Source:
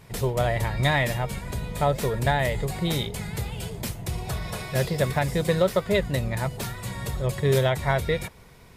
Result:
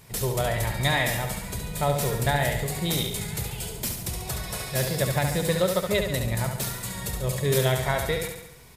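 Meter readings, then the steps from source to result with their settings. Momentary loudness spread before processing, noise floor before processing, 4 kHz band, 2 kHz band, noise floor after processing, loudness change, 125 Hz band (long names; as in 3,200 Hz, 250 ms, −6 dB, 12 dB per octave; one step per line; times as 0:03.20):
10 LU, −49 dBFS, +2.5 dB, 0.0 dB, −44 dBFS, −0.5 dB, −1.5 dB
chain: high-shelf EQ 4,600 Hz +11 dB
on a send: repeating echo 70 ms, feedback 55%, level −6 dB
on the sum: level −3 dB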